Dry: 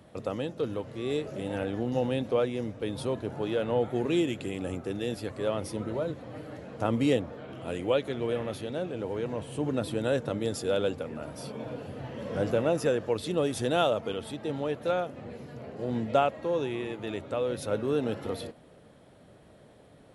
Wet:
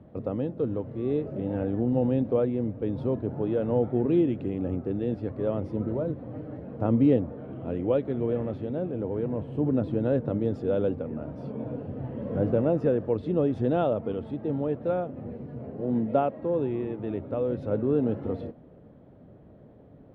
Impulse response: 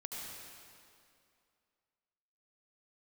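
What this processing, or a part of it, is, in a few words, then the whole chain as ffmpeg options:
phone in a pocket: -filter_complex "[0:a]lowpass=3.4k,equalizer=f=260:t=o:w=0.33:g=2.5,highshelf=f=2.2k:g=-11,asettb=1/sr,asplit=3[a][b][c];[a]atrim=end=15.814[d];[b]atrim=start=15.81:end=16.43,asetpts=PTS-STARTPTS,afade=t=in:d=0.004:c=qsin,afade=t=out:st=0.616:d=0.004:c=qsin,highpass=140[e];[c]atrim=start=16.426[f];[d][e]acrossfade=d=0.004:c1=hsin:c2=qsin[g];[g][f]acrossfade=d=0.004:c1=qsin:c2=hsin,tiltshelf=f=710:g=6"

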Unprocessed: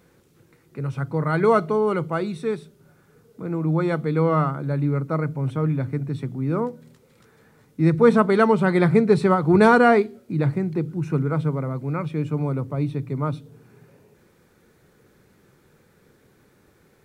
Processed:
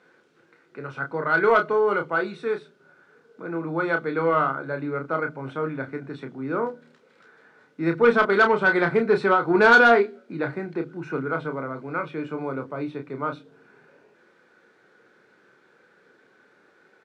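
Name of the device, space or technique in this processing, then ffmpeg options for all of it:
intercom: -filter_complex "[0:a]highpass=340,lowpass=4.2k,equalizer=f=1.5k:t=o:w=0.25:g=10,asoftclip=type=tanh:threshold=-9dB,asplit=2[a][b];[b]adelay=30,volume=-6.5dB[c];[a][c]amix=inputs=2:normalize=0"

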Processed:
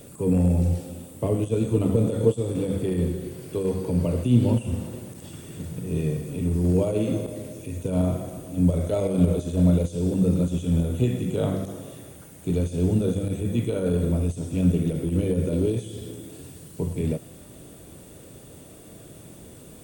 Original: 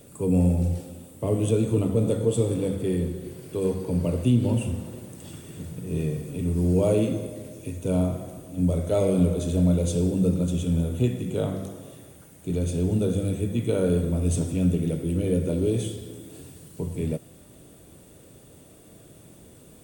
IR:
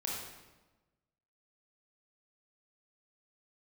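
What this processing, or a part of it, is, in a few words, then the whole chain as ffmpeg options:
de-esser from a sidechain: -filter_complex "[0:a]asplit=2[a][b];[b]highpass=f=4.8k:w=0.5412,highpass=f=4.8k:w=1.3066,apad=whole_len=874925[c];[a][c]sidechaincompress=threshold=-50dB:ratio=8:attack=2.1:release=33,volume=5dB"

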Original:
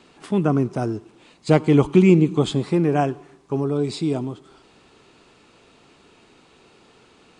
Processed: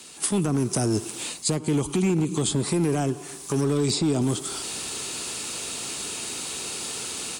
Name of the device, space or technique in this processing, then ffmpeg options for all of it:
FM broadcast chain: -filter_complex "[0:a]asettb=1/sr,asplit=3[a][b][c];[a]atrim=end=3.614[d];[b]atrim=start=3.61:end=4.22,asetpts=PTS-STARTPTS,afade=t=in:d=0.004:c=qsin,afade=t=out:st=0.606:d=0.004:c=qsin,lowpass=6.6k[e];[c]atrim=start=4.216[f];[d][e]acrossfade=d=0.004:c1=hsin:c2=qsin[g];[g][f]acrossfade=d=0.004:c1=qsin:c2=hsin,highpass=f=40:w=0.5412,highpass=f=40:w=1.3066,dynaudnorm=f=160:g=3:m=14dB,acrossover=split=430|1500[h][i][j];[h]acompressor=threshold=-14dB:ratio=4[k];[i]acompressor=threshold=-27dB:ratio=4[l];[j]acompressor=threshold=-43dB:ratio=4[m];[k][l][m]amix=inputs=3:normalize=0,aemphasis=mode=production:type=75fm,alimiter=limit=-14dB:level=0:latency=1:release=101,asoftclip=type=hard:threshold=-16.5dB,lowpass=f=15k:w=0.5412,lowpass=f=15k:w=1.3066,aemphasis=mode=production:type=75fm"

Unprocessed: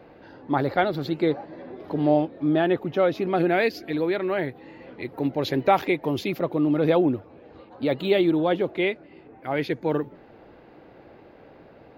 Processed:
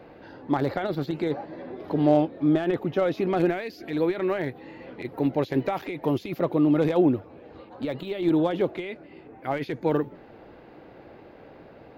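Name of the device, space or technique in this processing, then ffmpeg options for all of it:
de-esser from a sidechain: -filter_complex "[0:a]asplit=2[a][b];[b]highpass=5.1k,apad=whole_len=527930[c];[a][c]sidechaincompress=threshold=-48dB:ratio=16:attack=0.54:release=37,volume=1.5dB"

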